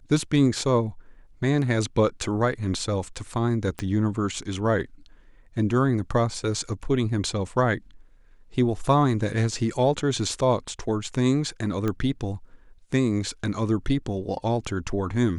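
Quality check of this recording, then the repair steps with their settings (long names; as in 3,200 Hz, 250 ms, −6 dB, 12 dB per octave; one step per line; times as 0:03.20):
0:03.79: click −16 dBFS
0:11.88: click −15 dBFS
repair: click removal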